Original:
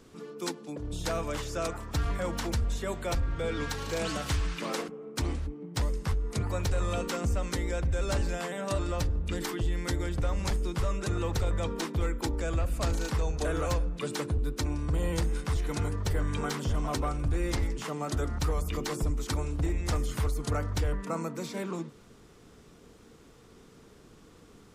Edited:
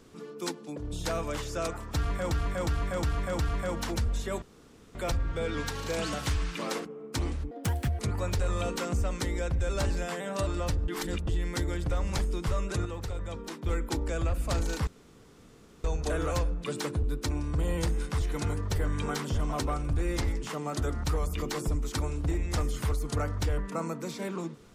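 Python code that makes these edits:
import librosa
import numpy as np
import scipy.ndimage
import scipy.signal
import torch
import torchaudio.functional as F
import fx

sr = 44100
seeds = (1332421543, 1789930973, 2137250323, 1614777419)

y = fx.edit(x, sr, fx.repeat(start_s=1.95, length_s=0.36, count=5),
    fx.insert_room_tone(at_s=2.98, length_s=0.53),
    fx.speed_span(start_s=5.54, length_s=0.77, speed=1.6),
    fx.reverse_span(start_s=9.2, length_s=0.39),
    fx.clip_gain(start_s=11.17, length_s=0.81, db=-6.5),
    fx.insert_room_tone(at_s=13.19, length_s=0.97), tone=tone)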